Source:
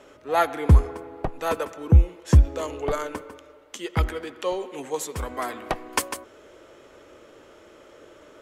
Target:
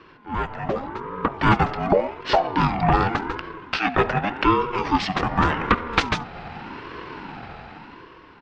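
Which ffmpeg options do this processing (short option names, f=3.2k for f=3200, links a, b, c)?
-filter_complex "[0:a]lowshelf=f=310:g=-4.5,bandreject=f=50:t=h:w=6,bandreject=f=100:t=h:w=6,bandreject=f=150:t=h:w=6,bandreject=f=200:t=h:w=6,bandreject=f=250:t=h:w=6,bandreject=f=300:t=h:w=6,bandreject=f=350:t=h:w=6,asplit=2[a][b];[b]acompressor=threshold=-36dB:ratio=5,volume=1dB[c];[a][c]amix=inputs=2:normalize=0,aemphasis=mode=production:type=bsi,asoftclip=type=tanh:threshold=-16.5dB,dynaudnorm=f=190:g=11:m=13.5dB,asplit=2[d][e];[e]aecho=0:1:72:0.0794[f];[d][f]amix=inputs=2:normalize=0,asetrate=28595,aresample=44100,atempo=1.54221,lowpass=f=3k:w=0.5412,lowpass=f=3k:w=1.3066,aeval=exprs='val(0)*sin(2*PI*580*n/s+580*0.25/0.86*sin(2*PI*0.86*n/s))':c=same"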